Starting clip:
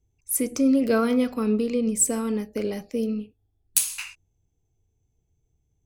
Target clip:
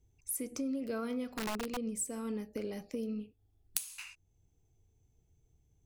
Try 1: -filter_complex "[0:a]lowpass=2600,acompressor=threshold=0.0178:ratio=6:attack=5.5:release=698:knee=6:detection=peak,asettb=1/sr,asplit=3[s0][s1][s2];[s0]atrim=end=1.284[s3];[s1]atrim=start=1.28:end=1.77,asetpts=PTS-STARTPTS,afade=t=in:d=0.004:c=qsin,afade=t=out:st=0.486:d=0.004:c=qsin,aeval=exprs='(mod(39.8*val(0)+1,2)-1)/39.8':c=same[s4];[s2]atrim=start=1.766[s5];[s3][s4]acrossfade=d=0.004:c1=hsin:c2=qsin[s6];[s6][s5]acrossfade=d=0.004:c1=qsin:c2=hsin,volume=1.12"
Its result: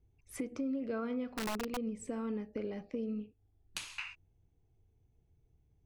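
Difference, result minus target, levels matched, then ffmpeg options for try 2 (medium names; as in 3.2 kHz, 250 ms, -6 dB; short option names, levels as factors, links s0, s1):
2 kHz band +3.0 dB
-filter_complex "[0:a]acompressor=threshold=0.0178:ratio=6:attack=5.5:release=698:knee=6:detection=peak,asettb=1/sr,asplit=3[s0][s1][s2];[s0]atrim=end=1.284[s3];[s1]atrim=start=1.28:end=1.77,asetpts=PTS-STARTPTS,afade=t=in:d=0.004:c=qsin,afade=t=out:st=0.486:d=0.004:c=qsin,aeval=exprs='(mod(39.8*val(0)+1,2)-1)/39.8':c=same[s4];[s2]atrim=start=1.766[s5];[s3][s4]acrossfade=d=0.004:c1=hsin:c2=qsin[s6];[s6][s5]acrossfade=d=0.004:c1=qsin:c2=hsin,volume=1.12"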